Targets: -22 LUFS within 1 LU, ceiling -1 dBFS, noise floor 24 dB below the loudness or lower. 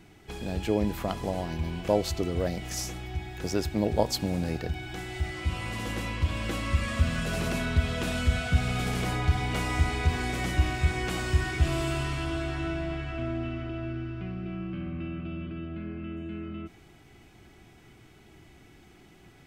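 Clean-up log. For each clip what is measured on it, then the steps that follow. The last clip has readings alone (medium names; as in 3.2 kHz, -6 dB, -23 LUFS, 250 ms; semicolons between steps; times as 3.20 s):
loudness -30.5 LUFS; peak level -8.5 dBFS; loudness target -22.0 LUFS
-> trim +8.5 dB; peak limiter -1 dBFS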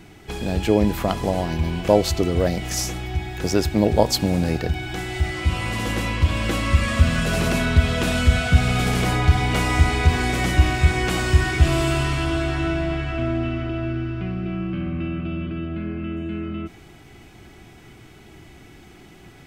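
loudness -22.0 LUFS; peak level -1.0 dBFS; noise floor -46 dBFS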